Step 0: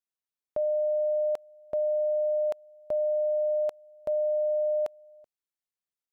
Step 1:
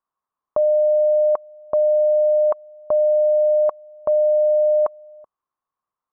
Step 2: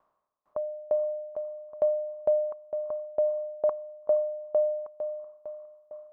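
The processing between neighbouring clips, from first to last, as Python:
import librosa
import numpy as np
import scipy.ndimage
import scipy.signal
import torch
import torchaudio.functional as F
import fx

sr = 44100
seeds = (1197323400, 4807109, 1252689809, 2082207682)

y1 = fx.lowpass_res(x, sr, hz=1100.0, q=8.1)
y1 = F.gain(torch.from_numpy(y1), 7.0).numpy()
y2 = fx.bin_compress(y1, sr, power=0.6)
y2 = fx.echo_diffused(y2, sr, ms=454, feedback_pct=51, wet_db=-12.5)
y2 = fx.tremolo_decay(y2, sr, direction='decaying', hz=2.2, depth_db=26)
y2 = F.gain(torch.from_numpy(y2), -5.5).numpy()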